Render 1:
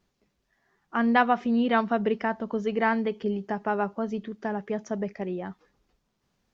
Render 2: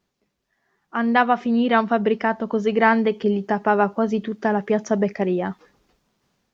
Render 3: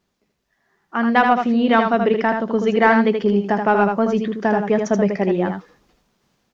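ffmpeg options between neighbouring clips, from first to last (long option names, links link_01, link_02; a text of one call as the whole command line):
ffmpeg -i in.wav -af "lowshelf=frequency=73:gain=-9.5,dynaudnorm=framelen=430:gausssize=5:maxgain=11dB" out.wav
ffmpeg -i in.wav -filter_complex "[0:a]asplit=2[link_01][link_02];[link_02]asoftclip=type=tanh:threshold=-13dB,volume=-9.5dB[link_03];[link_01][link_03]amix=inputs=2:normalize=0,aecho=1:1:79:0.531" out.wav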